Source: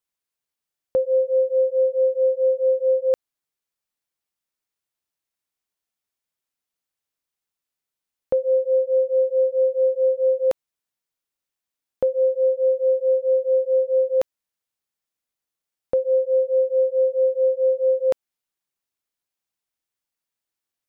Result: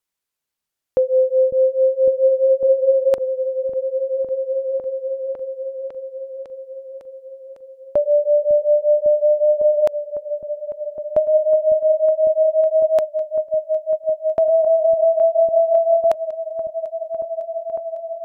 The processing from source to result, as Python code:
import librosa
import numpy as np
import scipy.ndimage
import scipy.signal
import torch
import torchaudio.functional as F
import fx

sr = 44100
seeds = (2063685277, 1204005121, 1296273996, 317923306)

p1 = fx.speed_glide(x, sr, from_pct=97, to_pct=132)
p2 = p1 + fx.echo_opening(p1, sr, ms=553, hz=200, octaves=1, feedback_pct=70, wet_db=-3, dry=0)
y = p2 * 10.0 ** (3.5 / 20.0)